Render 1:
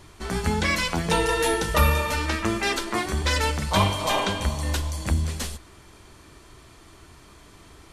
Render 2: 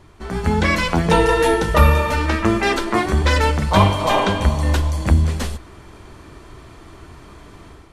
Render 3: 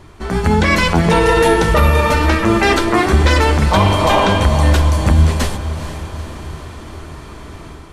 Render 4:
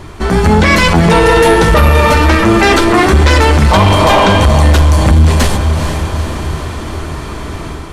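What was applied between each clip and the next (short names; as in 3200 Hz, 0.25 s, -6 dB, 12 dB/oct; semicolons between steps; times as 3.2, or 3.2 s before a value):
high shelf 2800 Hz -11 dB; AGC gain up to 8 dB; gain +1.5 dB
limiter -10 dBFS, peak gain reduction 8.5 dB; diffused feedback echo 0.452 s, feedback 60%, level -12 dB; gain +6.5 dB
in parallel at +2.5 dB: limiter -12.5 dBFS, peak gain reduction 11 dB; on the sum: soft clip -5 dBFS, distortion -16 dB; gain +3.5 dB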